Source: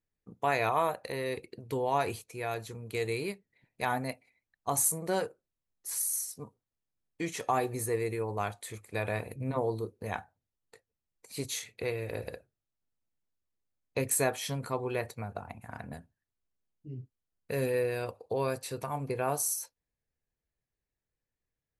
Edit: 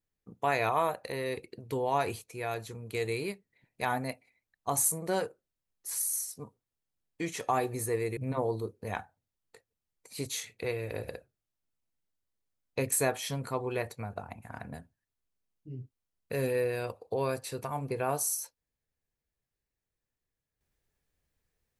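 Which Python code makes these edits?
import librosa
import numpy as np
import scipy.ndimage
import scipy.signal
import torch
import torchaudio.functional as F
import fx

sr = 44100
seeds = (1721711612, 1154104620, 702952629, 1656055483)

y = fx.edit(x, sr, fx.cut(start_s=8.17, length_s=1.19), tone=tone)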